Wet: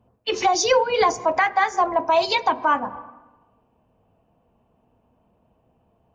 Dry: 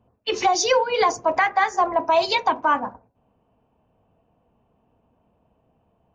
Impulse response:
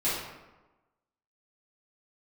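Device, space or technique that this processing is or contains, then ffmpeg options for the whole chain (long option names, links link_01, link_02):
ducked reverb: -filter_complex "[0:a]asettb=1/sr,asplit=3[link_01][link_02][link_03];[link_01]atrim=end=0.534[link_04];[link_02]atrim=start=0.53:end=1.15,asetpts=PTS-STARTPTS,afade=type=in:duration=0.004:curve=qsin,afade=type=out:start_time=0.616:duration=0.004:curve=qsin,lowshelf=frequency=220:gain=7[link_05];[link_03]atrim=start=1.146[link_06];[link_04][link_05]acrossfade=duration=0.004:curve1=hsin:curve2=qsin[link_07];[link_07][link_06]acrossfade=duration=0.004:curve1=qsin:curve2=hsin,asplit=3[link_08][link_09][link_10];[1:a]atrim=start_sample=2205[link_11];[link_09][link_11]afir=irnorm=-1:irlink=0[link_12];[link_10]apad=whole_len=270977[link_13];[link_12][link_13]sidechaincompress=threshold=-36dB:ratio=8:attack=16:release=103,volume=-19dB[link_14];[link_08][link_14]amix=inputs=2:normalize=0"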